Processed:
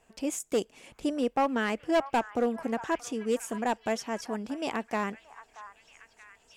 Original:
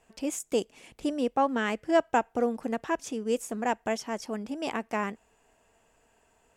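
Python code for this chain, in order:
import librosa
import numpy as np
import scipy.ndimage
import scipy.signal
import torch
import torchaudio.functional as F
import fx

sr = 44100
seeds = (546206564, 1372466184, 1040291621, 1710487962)

p1 = np.clip(10.0 ** (20.0 / 20.0) * x, -1.0, 1.0) / 10.0 ** (20.0 / 20.0)
y = p1 + fx.echo_stepped(p1, sr, ms=629, hz=1200.0, octaves=0.7, feedback_pct=70, wet_db=-11.5, dry=0)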